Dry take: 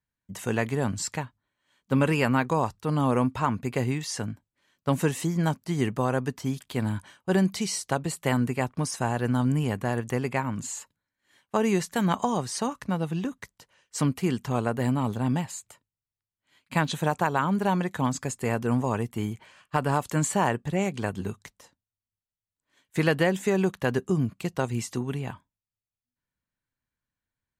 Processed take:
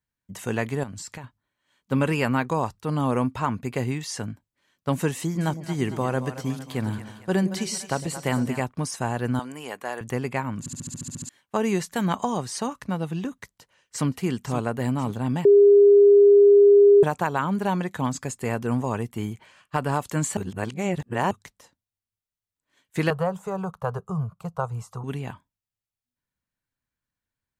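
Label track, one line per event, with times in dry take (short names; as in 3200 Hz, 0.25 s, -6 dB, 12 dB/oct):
0.830000	1.240000	compressor, threshold -34 dBFS
5.180000	8.600000	split-band echo split 560 Hz, lows 0.108 s, highs 0.227 s, level -11 dB
9.390000	10.010000	HPF 510 Hz
10.590000	10.590000	stutter in place 0.07 s, 10 plays
13.390000	14.070000	echo throw 0.52 s, feedback 50%, level -10.5 dB
15.450000	17.030000	bleep 405 Hz -10 dBFS
20.370000	21.310000	reverse
23.100000	25.040000	EQ curve 170 Hz 0 dB, 300 Hz -30 dB, 440 Hz -2 dB, 1300 Hz +6 dB, 1800 Hz -18 dB, 9900 Hz -10 dB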